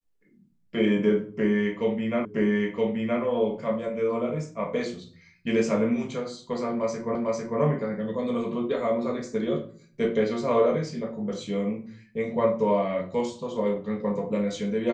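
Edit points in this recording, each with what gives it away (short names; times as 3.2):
2.25 repeat of the last 0.97 s
7.15 repeat of the last 0.45 s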